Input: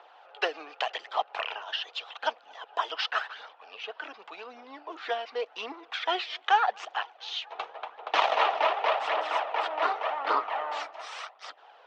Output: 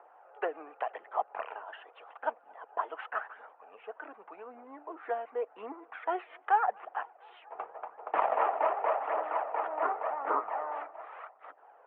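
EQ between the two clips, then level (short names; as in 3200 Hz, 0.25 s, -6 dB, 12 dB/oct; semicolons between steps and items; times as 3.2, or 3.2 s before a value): Bessel low-pass 1400 Hz, order 6; air absorption 400 m; 0.0 dB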